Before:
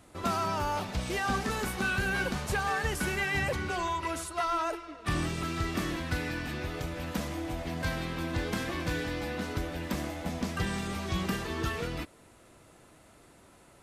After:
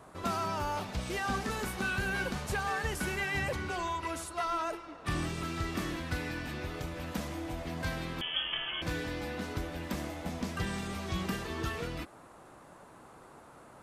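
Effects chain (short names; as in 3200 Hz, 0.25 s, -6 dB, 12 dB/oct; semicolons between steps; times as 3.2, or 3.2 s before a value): 8.21–8.82 inverted band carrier 3300 Hz; band noise 110–1300 Hz -52 dBFS; gain -3 dB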